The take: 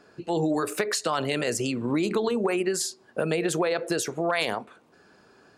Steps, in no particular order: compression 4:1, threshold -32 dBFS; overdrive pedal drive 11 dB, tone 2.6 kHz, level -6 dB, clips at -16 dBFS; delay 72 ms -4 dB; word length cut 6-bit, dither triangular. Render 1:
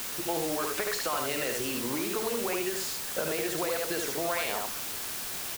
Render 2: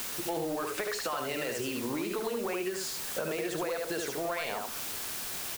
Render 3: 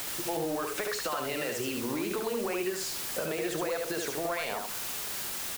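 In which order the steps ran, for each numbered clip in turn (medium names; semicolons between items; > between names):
delay > compression > overdrive pedal > word length cut; overdrive pedal > delay > word length cut > compression; overdrive pedal > word length cut > compression > delay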